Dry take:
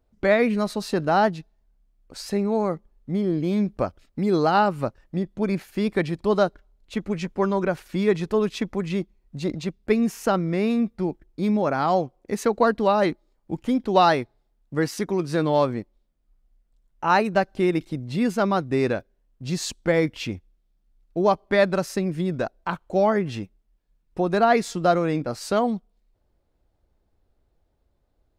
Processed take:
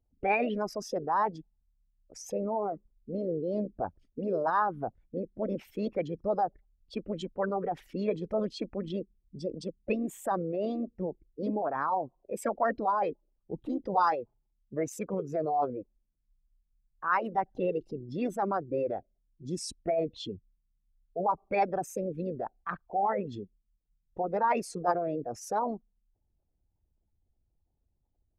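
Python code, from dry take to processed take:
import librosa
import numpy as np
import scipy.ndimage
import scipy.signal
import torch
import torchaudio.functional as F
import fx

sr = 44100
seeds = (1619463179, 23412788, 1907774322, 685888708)

y = fx.envelope_sharpen(x, sr, power=2.0)
y = fx.formant_shift(y, sr, semitones=4)
y = F.gain(torch.from_numpy(y), -8.0).numpy()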